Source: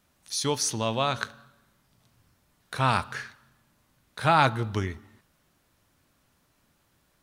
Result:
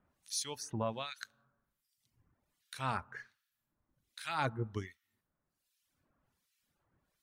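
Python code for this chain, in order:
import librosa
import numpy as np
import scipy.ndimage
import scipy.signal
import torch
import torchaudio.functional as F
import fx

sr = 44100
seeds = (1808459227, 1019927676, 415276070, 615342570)

y = fx.dereverb_blind(x, sr, rt60_s=1.3)
y = fx.harmonic_tremolo(y, sr, hz=1.3, depth_pct=100, crossover_hz=1900.0)
y = fx.dynamic_eq(y, sr, hz=3500.0, q=1.3, threshold_db=-46.0, ratio=4.0, max_db=-4)
y = y * librosa.db_to_amplitude(-4.5)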